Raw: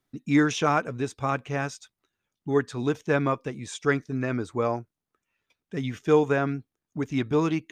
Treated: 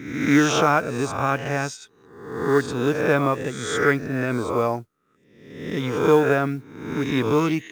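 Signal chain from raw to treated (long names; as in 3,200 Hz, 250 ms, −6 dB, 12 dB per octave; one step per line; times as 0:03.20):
peak hold with a rise ahead of every peak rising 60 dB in 0.86 s
noise that follows the level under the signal 32 dB
level +2.5 dB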